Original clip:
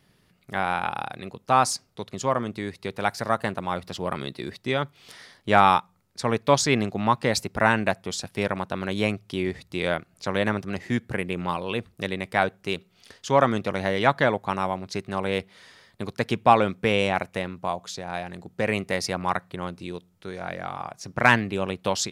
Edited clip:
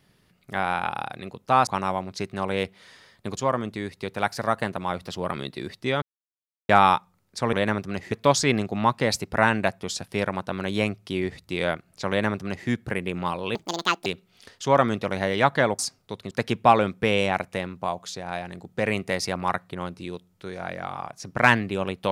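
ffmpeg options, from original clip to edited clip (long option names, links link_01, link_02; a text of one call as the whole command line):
ffmpeg -i in.wav -filter_complex "[0:a]asplit=11[link_01][link_02][link_03][link_04][link_05][link_06][link_07][link_08][link_09][link_10][link_11];[link_01]atrim=end=1.672[link_12];[link_02]atrim=start=14.418:end=16.122[link_13];[link_03]atrim=start=2.188:end=4.84,asetpts=PTS-STARTPTS,afade=type=out:start_time=2.648:duration=0.004:curve=hsin[link_14];[link_04]atrim=start=4.84:end=5.51,asetpts=PTS-STARTPTS,volume=0[link_15];[link_05]atrim=start=5.51:end=6.352,asetpts=PTS-STARTPTS,afade=type=in:duration=0.004:curve=hsin[link_16];[link_06]atrim=start=10.318:end=10.912[link_17];[link_07]atrim=start=6.348:end=11.784[link_18];[link_08]atrim=start=11.78:end=12.69,asetpts=PTS-STARTPTS,asetrate=78939,aresample=44100[link_19];[link_09]atrim=start=12.686:end=14.422[link_20];[link_10]atrim=start=1.668:end=2.192[link_21];[link_11]atrim=start=16.118[link_22];[link_12][link_13]acrossfade=duration=0.004:curve1=hsin:curve2=hsin[link_23];[link_14][link_15][link_16]concat=n=3:v=0:a=1[link_24];[link_23][link_24]acrossfade=duration=0.004:curve1=hsin:curve2=hsin[link_25];[link_25][link_17]acrossfade=duration=0.004:curve1=hsin:curve2=hsin[link_26];[link_26][link_18]acrossfade=duration=0.004:curve1=hsin:curve2=hsin[link_27];[link_27][link_19]acrossfade=duration=0.004:curve1=hsin:curve2=hsin[link_28];[link_28][link_20]acrossfade=duration=0.004:curve1=hsin:curve2=hsin[link_29];[link_29][link_21]acrossfade=duration=0.004:curve1=hsin:curve2=hsin[link_30];[link_30][link_22]acrossfade=duration=0.004:curve1=hsin:curve2=hsin" out.wav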